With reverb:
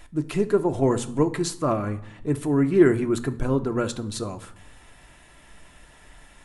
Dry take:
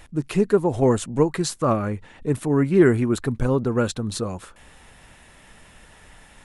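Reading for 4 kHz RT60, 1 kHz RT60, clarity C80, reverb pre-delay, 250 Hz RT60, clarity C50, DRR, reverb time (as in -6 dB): 0.50 s, 0.75 s, 19.5 dB, 3 ms, 1.0 s, 16.5 dB, 7.5 dB, 0.75 s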